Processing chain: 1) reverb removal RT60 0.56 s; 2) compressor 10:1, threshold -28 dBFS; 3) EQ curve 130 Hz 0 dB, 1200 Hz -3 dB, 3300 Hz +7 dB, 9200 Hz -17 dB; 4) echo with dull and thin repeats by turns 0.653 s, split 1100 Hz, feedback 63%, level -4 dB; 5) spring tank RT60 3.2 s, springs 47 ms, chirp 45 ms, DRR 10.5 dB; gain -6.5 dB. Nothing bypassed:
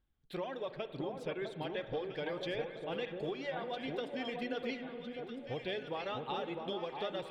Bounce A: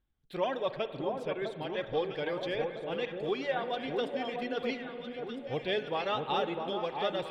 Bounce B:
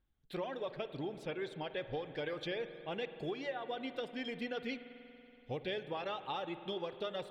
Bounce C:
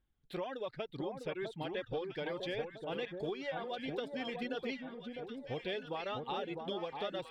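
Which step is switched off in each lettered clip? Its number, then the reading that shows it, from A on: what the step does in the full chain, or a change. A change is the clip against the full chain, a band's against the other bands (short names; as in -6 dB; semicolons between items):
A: 2, mean gain reduction 4.5 dB; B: 4, loudness change -1.0 LU; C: 5, echo-to-direct -4.0 dB to -5.5 dB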